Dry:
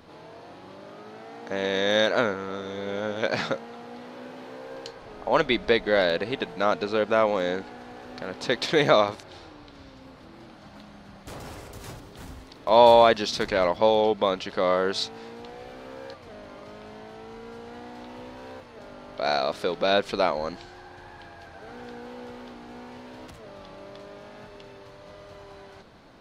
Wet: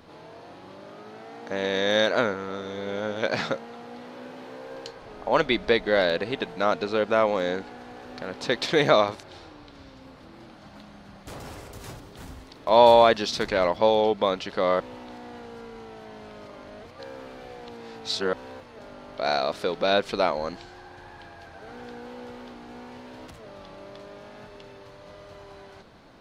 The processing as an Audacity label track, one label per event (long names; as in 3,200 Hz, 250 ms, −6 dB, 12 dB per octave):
14.800000	18.330000	reverse